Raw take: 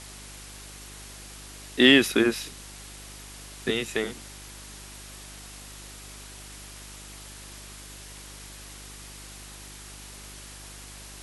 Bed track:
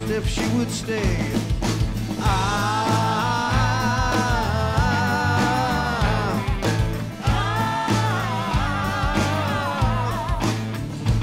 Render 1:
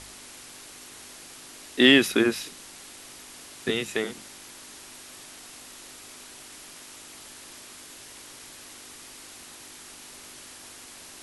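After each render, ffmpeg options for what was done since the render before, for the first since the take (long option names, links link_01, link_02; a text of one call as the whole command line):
ffmpeg -i in.wav -af "bandreject=frequency=50:width_type=h:width=4,bandreject=frequency=100:width_type=h:width=4,bandreject=frequency=150:width_type=h:width=4,bandreject=frequency=200:width_type=h:width=4" out.wav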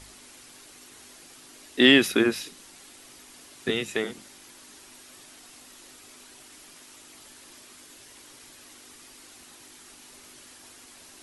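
ffmpeg -i in.wav -af "afftdn=noise_reduction=6:noise_floor=-46" out.wav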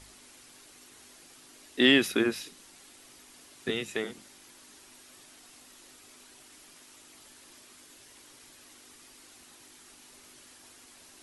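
ffmpeg -i in.wav -af "volume=-4.5dB" out.wav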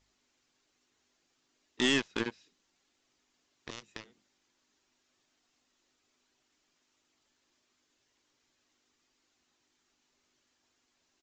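ffmpeg -i in.wav -af "aeval=exprs='0.376*(cos(1*acos(clip(val(0)/0.376,-1,1)))-cos(1*PI/2))+0.106*(cos(2*acos(clip(val(0)/0.376,-1,1)))-cos(2*PI/2))+0.0133*(cos(3*acos(clip(val(0)/0.376,-1,1)))-cos(3*PI/2))+0.0531*(cos(7*acos(clip(val(0)/0.376,-1,1)))-cos(7*PI/2))+0.0075*(cos(8*acos(clip(val(0)/0.376,-1,1)))-cos(8*PI/2))':channel_layout=same,aresample=16000,asoftclip=type=tanh:threshold=-19.5dB,aresample=44100" out.wav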